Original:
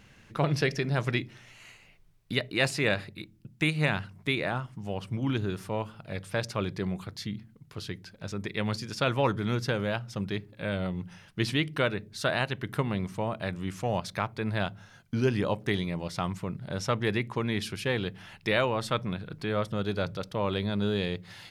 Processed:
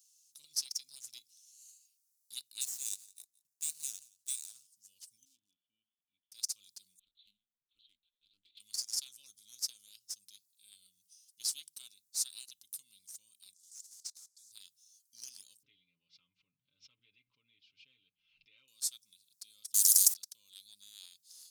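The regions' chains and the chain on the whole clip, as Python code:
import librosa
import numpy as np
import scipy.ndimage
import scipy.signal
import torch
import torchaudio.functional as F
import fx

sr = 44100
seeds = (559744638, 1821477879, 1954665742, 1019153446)

y = fx.chain(x, sr, fx.median_filter(points=9),
    fx.echo_single(ms=172, db=-17.5), at=(2.61, 4.67))
y = fx.chain(y, sr, fx.formant_cascade(vowel='i'),
    fx.clip_hard(threshold_db=-32.0), at=(5.25, 6.32))
y = fx.chain(y, sr, fx.lpc_vocoder(seeds[0], excitation='pitch_kept', order=10),
    fx.doppler_dist(depth_ms=0.29), at=(6.99, 8.6))
y = fx.chain(y, sr, fx.block_float(bits=5),
    fx.bandpass_edges(low_hz=350.0, high_hz=6100.0),
    fx.fixed_phaser(hz=1100.0, stages=4), at=(13.54, 14.52))
y = fx.chain(y, sr, fx.steep_lowpass(hz=2500.0, slope=36),
    fx.comb(ms=7.1, depth=0.74),
    fx.pre_swell(db_per_s=63.0), at=(15.63, 18.68))
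y = fx.chain(y, sr, fx.tilt_shelf(db=-8.5, hz=770.0),
    fx.spectral_comp(ratio=10.0), at=(19.74, 20.14))
y = scipy.signal.sosfilt(scipy.signal.cheby2(4, 60, 1900.0, 'highpass', fs=sr, output='sos'), y)
y = y + 0.38 * np.pad(y, (int(3.8 * sr / 1000.0), 0))[:len(y)]
y = fx.leveller(y, sr, passes=1)
y = y * 10.0 ** (7.5 / 20.0)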